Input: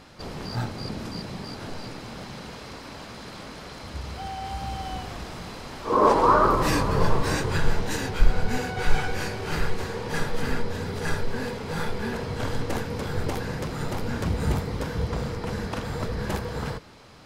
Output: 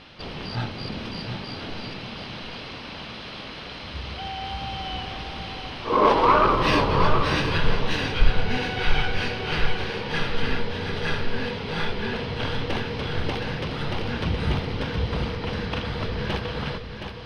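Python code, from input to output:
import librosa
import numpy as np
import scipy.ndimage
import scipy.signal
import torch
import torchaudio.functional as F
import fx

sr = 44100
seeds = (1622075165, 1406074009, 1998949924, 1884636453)

p1 = fx.tracing_dist(x, sr, depth_ms=0.037)
p2 = scipy.signal.savgol_filter(p1, 15, 4, mode='constant')
p3 = fx.peak_eq(p2, sr, hz=3000.0, db=10.5, octaves=0.88)
y = p3 + fx.echo_single(p3, sr, ms=719, db=-7.5, dry=0)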